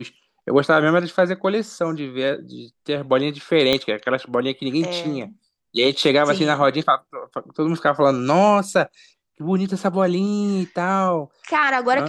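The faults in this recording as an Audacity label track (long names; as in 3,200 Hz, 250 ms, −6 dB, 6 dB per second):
3.730000	3.730000	click −5 dBFS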